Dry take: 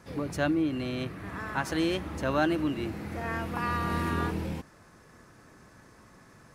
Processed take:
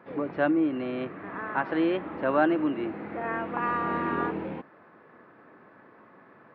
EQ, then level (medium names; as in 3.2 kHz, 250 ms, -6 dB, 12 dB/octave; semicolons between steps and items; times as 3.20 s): Gaussian low-pass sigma 3.7 samples; high-pass 280 Hz 12 dB/octave; +5.0 dB